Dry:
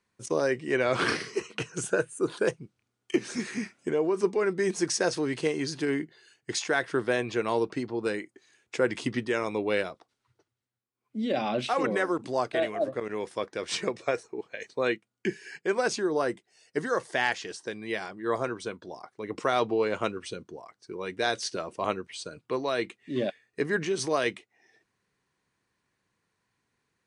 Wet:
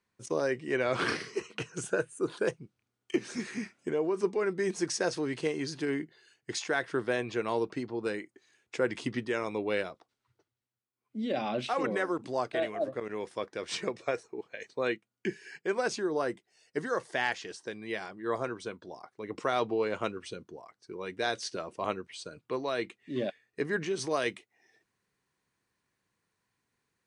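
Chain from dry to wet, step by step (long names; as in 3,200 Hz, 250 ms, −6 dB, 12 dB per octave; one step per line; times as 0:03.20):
high-shelf EQ 9,400 Hz −5 dB, from 0:24.11 +6 dB
level −3.5 dB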